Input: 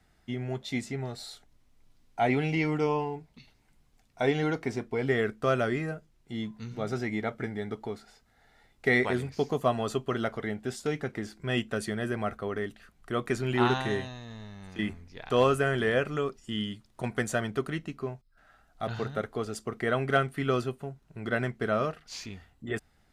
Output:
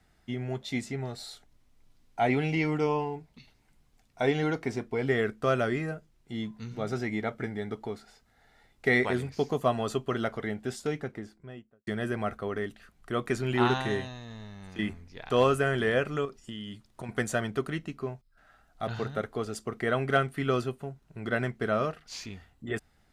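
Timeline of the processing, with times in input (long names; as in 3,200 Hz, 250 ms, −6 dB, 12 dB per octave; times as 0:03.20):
0:10.70–0:11.87: fade out and dull
0:16.25–0:17.09: downward compressor 5 to 1, threshold −35 dBFS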